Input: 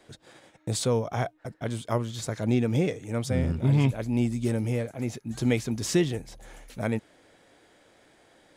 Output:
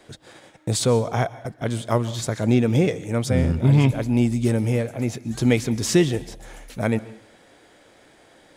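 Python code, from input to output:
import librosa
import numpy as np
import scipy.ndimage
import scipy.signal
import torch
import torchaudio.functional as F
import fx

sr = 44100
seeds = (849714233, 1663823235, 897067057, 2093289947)

y = fx.rev_plate(x, sr, seeds[0], rt60_s=0.54, hf_ratio=0.95, predelay_ms=115, drr_db=18.0)
y = y * librosa.db_to_amplitude(6.0)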